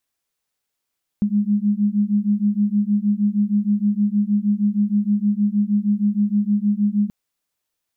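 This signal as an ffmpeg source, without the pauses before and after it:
ffmpeg -f lavfi -i "aevalsrc='0.112*(sin(2*PI*203*t)+sin(2*PI*209.4*t))':duration=5.88:sample_rate=44100" out.wav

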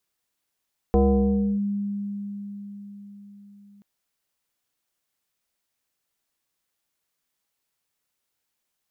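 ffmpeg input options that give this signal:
ffmpeg -f lavfi -i "aevalsrc='0.2*pow(10,-3*t/4.9)*sin(2*PI*202*t+1.6*clip(1-t/0.66,0,1)*sin(2*PI*1.34*202*t))':duration=2.88:sample_rate=44100" out.wav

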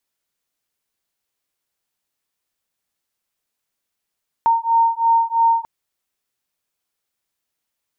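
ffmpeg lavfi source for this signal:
ffmpeg -f lavfi -i "aevalsrc='0.15*(sin(2*PI*917*t)+sin(2*PI*920*t))':duration=1.19:sample_rate=44100" out.wav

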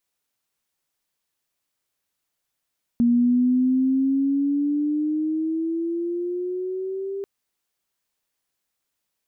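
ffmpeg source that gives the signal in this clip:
ffmpeg -f lavfi -i "aevalsrc='pow(10,(-14.5-12*t/4.24)/20)*sin(2*PI*236*4.24/(9*log(2)/12)*(exp(9*log(2)/12*t/4.24)-1))':duration=4.24:sample_rate=44100" out.wav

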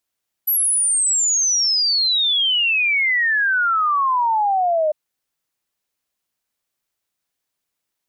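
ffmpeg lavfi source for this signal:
ffmpeg -f lavfi -i "aevalsrc='0.178*clip(min(t,4.45-t)/0.01,0,1)*sin(2*PI*12000*4.45/log(600/12000)*(exp(log(600/12000)*t/4.45)-1))':duration=4.45:sample_rate=44100" out.wav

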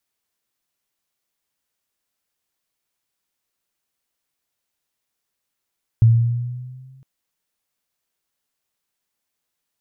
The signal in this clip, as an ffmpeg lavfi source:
ffmpeg -f lavfi -i "aevalsrc='pow(10,(-7-38*t/1.01)/20)*sin(2*PI*113*1.01/(3*log(2)/12)*(exp(3*log(2)/12*t/1.01)-1))':duration=1.01:sample_rate=44100" out.wav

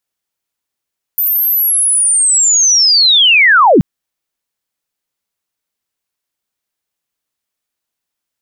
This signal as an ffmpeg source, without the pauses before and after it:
ffmpeg -f lavfi -i "aevalsrc='pow(10,(-10.5+7*t/2.63)/20)*sin(2*PI*(14000*t-13870*t*t/(2*2.63)))':duration=2.63:sample_rate=44100" out.wav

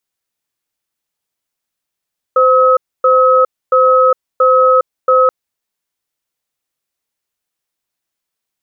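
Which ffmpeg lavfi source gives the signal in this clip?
ffmpeg -f lavfi -i "aevalsrc='0.355*(sin(2*PI*516*t)+sin(2*PI*1280*t))*clip(min(mod(t,0.68),0.41-mod(t,0.68))/0.005,0,1)':duration=2.93:sample_rate=44100" out.wav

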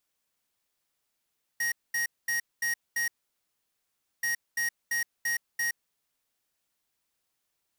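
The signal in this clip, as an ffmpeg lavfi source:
ffmpeg -f lavfi -i "aevalsrc='0.0376*(2*lt(mod(1880*t,1),0.5)-1)*clip(min(mod(mod(t,2.63),0.34),0.12-mod(mod(t,2.63),0.34))/0.005,0,1)*lt(mod(t,2.63),1.7)':duration=5.26:sample_rate=44100" out.wav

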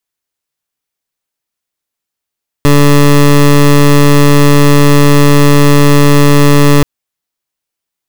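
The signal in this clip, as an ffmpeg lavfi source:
ffmpeg -f lavfi -i "aevalsrc='0.596*(2*lt(mod(144*t,1),0.19)-1)':duration=4.18:sample_rate=44100" out.wav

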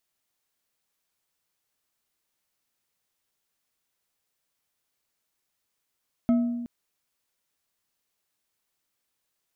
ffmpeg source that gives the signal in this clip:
ffmpeg -f lavfi -i "aevalsrc='0.15*pow(10,-3*t/1.35)*sin(2*PI*239*t)+0.0398*pow(10,-3*t/0.664)*sin(2*PI*658.9*t)+0.0106*pow(10,-3*t/0.414)*sin(2*PI*1291.6*t)+0.00282*pow(10,-3*t/0.291)*sin(2*PI*2135*t)+0.00075*pow(10,-3*t/0.22)*sin(2*PI*3188.3*t)':duration=0.37:sample_rate=44100" out.wav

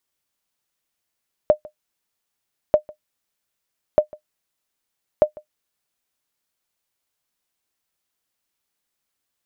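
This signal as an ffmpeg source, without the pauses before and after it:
ffmpeg -f lavfi -i "aevalsrc='0.631*(sin(2*PI*607*mod(t,1.24))*exp(-6.91*mod(t,1.24)/0.1)+0.0631*sin(2*PI*607*max(mod(t,1.24)-0.15,0))*exp(-6.91*max(mod(t,1.24)-0.15,0)/0.1))':duration=4.96:sample_rate=44100" out.wav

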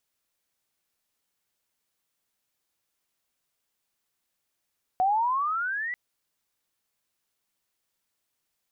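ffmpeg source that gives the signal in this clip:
ffmpeg -f lavfi -i "aevalsrc='pow(10,(-19.5-9.5*t/0.94)/20)*sin(2*PI*730*0.94/log(2000/730)*(exp(log(2000/730)*t/0.94)-1))':duration=0.94:sample_rate=44100" out.wav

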